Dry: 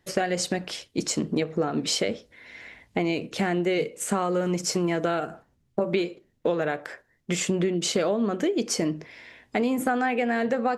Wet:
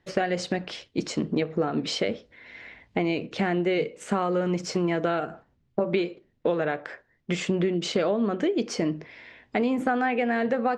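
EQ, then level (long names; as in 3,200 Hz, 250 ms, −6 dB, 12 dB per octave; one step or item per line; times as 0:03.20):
low-pass filter 4,100 Hz 12 dB per octave
0.0 dB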